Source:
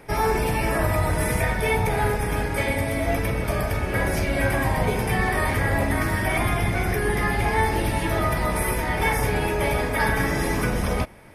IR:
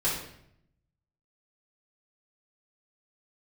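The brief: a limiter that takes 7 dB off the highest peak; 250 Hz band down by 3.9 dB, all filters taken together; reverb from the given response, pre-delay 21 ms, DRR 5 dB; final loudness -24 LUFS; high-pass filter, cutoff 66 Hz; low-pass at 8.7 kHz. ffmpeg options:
-filter_complex "[0:a]highpass=66,lowpass=8700,equalizer=f=250:t=o:g=-5.5,alimiter=limit=0.126:level=0:latency=1,asplit=2[s0][s1];[1:a]atrim=start_sample=2205,adelay=21[s2];[s1][s2]afir=irnorm=-1:irlink=0,volume=0.188[s3];[s0][s3]amix=inputs=2:normalize=0,volume=1.19"

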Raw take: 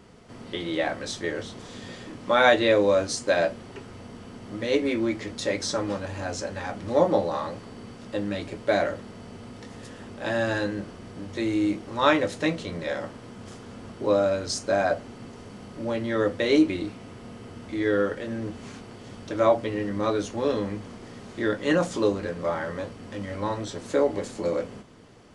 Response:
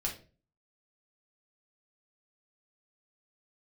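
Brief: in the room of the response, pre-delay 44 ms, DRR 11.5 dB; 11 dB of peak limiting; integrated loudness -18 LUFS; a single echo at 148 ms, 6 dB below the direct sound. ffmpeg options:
-filter_complex "[0:a]alimiter=limit=0.158:level=0:latency=1,aecho=1:1:148:0.501,asplit=2[s0][s1];[1:a]atrim=start_sample=2205,adelay=44[s2];[s1][s2]afir=irnorm=-1:irlink=0,volume=0.2[s3];[s0][s3]amix=inputs=2:normalize=0,volume=2.99"

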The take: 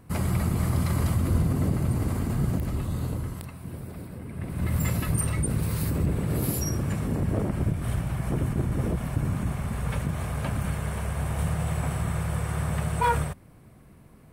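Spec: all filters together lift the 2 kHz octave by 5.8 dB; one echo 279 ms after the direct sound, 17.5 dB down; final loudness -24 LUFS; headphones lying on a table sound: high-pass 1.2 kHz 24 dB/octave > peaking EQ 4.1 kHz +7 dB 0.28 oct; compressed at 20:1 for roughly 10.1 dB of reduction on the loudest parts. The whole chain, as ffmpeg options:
-af "equalizer=f=2000:t=o:g=7.5,acompressor=threshold=0.0355:ratio=20,highpass=f=1200:w=0.5412,highpass=f=1200:w=1.3066,equalizer=f=4100:t=o:w=0.28:g=7,aecho=1:1:279:0.133,volume=8.91"

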